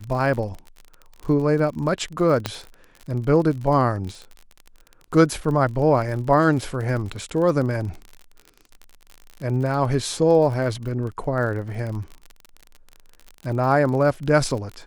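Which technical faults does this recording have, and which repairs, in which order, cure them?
crackle 41 per s -30 dBFS
2.46 s: pop -8 dBFS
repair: de-click

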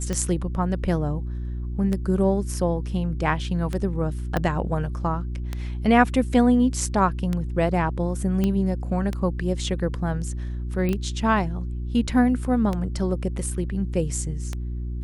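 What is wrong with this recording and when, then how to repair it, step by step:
hum 60 Hz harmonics 6 -29 dBFS
tick 33 1/3 rpm -14 dBFS
4.37 s: pop -11 dBFS
8.44 s: pop -12 dBFS
10.89 s: pop -15 dBFS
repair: de-click; de-hum 60 Hz, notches 6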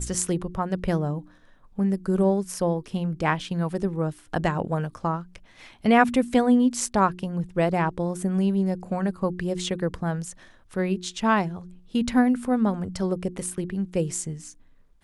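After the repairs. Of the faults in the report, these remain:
4.37 s: pop

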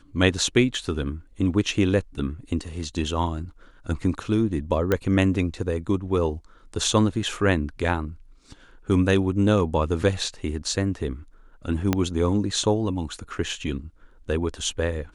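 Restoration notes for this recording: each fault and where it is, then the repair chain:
4.92 s: pop -9 dBFS
11.93 s: pop -7 dBFS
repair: de-click

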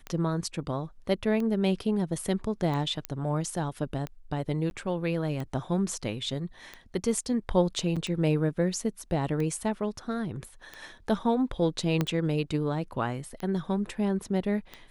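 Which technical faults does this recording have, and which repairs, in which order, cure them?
tick 45 rpm -22 dBFS
3.05 s: pop -15 dBFS
4.70–4.71 s: dropout 11 ms
7.96–7.97 s: dropout 6 ms
12.01 s: pop -13 dBFS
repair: de-click; interpolate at 4.70 s, 11 ms; interpolate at 7.96 s, 6 ms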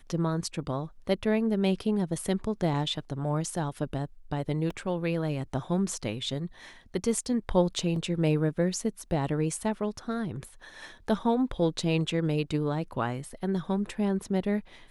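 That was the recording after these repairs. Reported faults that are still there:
12.01 s: pop

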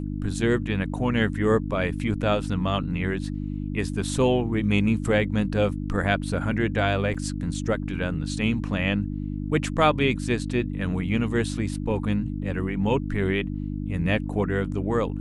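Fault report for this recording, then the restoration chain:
hum 50 Hz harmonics 6 -30 dBFS
7.14 s: dropout 4.9 ms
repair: de-hum 50 Hz, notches 6; interpolate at 7.14 s, 4.9 ms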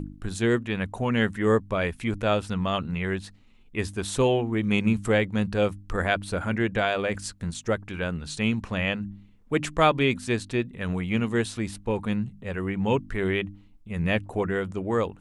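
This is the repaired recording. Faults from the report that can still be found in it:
nothing left

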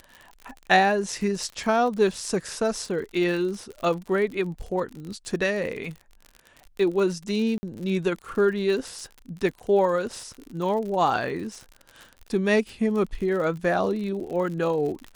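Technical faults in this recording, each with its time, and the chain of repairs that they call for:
crackle 53 per s -33 dBFS
7.58–7.63 s: dropout 50 ms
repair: de-click; interpolate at 7.58 s, 50 ms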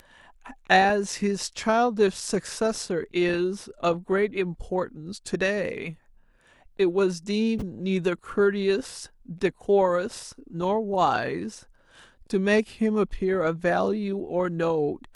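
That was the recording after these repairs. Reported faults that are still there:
nothing left

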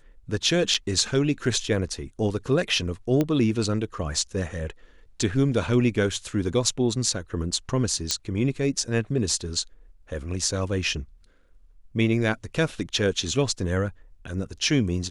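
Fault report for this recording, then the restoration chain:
0.74–0.75 s: dropout 5.6 ms
3.21 s: pop -11 dBFS
8.11 s: pop -8 dBFS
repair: de-click; interpolate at 0.74 s, 5.6 ms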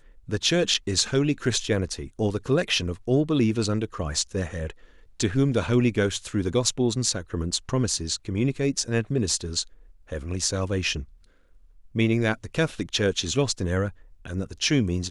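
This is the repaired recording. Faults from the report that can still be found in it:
8.11 s: pop

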